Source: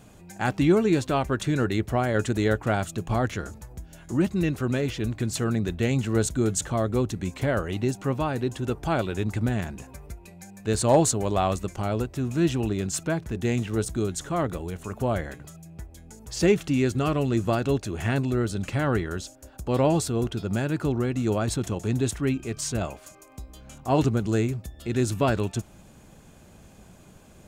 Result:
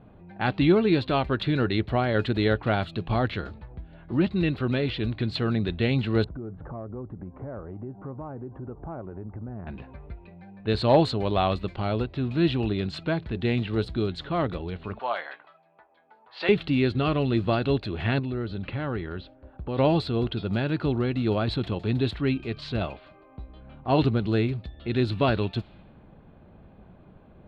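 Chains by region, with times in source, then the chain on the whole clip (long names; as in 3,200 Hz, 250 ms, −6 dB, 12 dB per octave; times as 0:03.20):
0:06.24–0:09.67: low-pass filter 1,200 Hz 24 dB per octave + downward compressor 4 to 1, threshold −35 dBFS
0:14.99–0:16.49: high-pass with resonance 900 Hz, resonance Q 1.6 + double-tracking delay 17 ms −12 dB
0:18.19–0:19.78: low-pass filter 2,600 Hz 6 dB per octave + notch filter 670 Hz, Q 16 + downward compressor 2 to 1, threshold −30 dBFS
whole clip: low-pass that shuts in the quiet parts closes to 1,100 Hz, open at −23.5 dBFS; drawn EQ curve 1,700 Hz 0 dB, 4,200 Hz +6 dB, 6,200 Hz −28 dB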